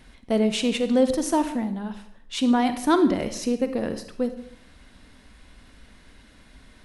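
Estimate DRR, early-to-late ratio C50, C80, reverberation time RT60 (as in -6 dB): 9.0 dB, 11.0 dB, 13.5 dB, 0.65 s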